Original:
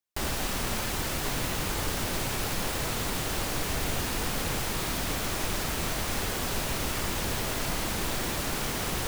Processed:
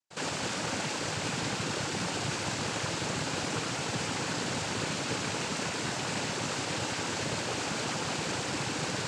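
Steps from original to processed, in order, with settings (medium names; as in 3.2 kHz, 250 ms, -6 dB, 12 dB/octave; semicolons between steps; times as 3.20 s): pre-echo 62 ms -14 dB; noise-vocoded speech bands 8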